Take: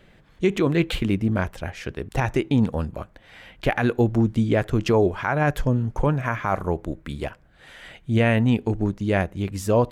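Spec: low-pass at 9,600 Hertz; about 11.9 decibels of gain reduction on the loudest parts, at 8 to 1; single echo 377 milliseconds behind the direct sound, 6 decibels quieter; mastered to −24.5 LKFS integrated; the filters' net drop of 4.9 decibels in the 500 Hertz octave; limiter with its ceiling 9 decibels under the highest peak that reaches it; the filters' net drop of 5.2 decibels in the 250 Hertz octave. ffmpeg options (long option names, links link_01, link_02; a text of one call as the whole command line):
ffmpeg -i in.wav -af "lowpass=9600,equalizer=frequency=250:width_type=o:gain=-5.5,equalizer=frequency=500:width_type=o:gain=-4.5,acompressor=threshold=-31dB:ratio=8,alimiter=level_in=2.5dB:limit=-24dB:level=0:latency=1,volume=-2.5dB,aecho=1:1:377:0.501,volume=13dB" out.wav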